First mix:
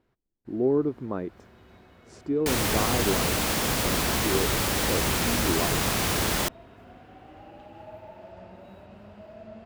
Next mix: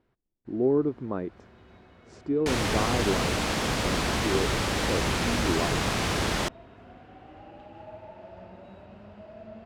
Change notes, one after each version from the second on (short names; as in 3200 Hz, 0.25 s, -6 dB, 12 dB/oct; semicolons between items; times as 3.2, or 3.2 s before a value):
master: add air absorption 63 m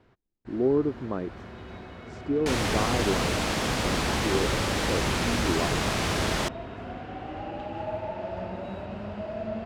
first sound +11.5 dB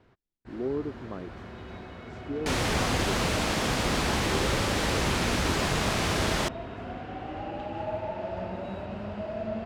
speech -7.5 dB